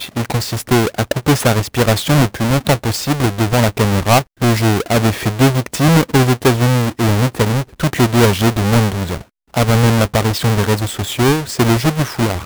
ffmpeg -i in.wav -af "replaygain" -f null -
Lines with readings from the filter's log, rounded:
track_gain = -4.1 dB
track_peak = 0.353